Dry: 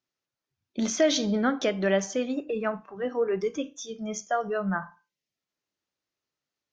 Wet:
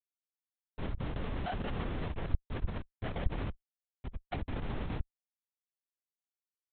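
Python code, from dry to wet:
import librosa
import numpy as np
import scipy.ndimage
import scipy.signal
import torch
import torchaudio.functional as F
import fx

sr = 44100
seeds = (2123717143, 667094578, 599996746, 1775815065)

p1 = fx.lower_of_two(x, sr, delay_ms=3.8)
p2 = fx.cheby_harmonics(p1, sr, harmonics=(3, 5), levels_db=(-43, -35), full_scale_db=-13.5)
p3 = p2 + fx.echo_feedback(p2, sr, ms=240, feedback_pct=26, wet_db=-12.0, dry=0)
p4 = fx.quant_companded(p3, sr, bits=6)
p5 = fx.octave_resonator(p4, sr, note='F#', decay_s=0.44)
p6 = fx.schmitt(p5, sr, flips_db=-48.5)
p7 = fx.lpc_vocoder(p6, sr, seeds[0], excitation='whisper', order=10)
y = F.gain(torch.from_numpy(p7), 16.0).numpy()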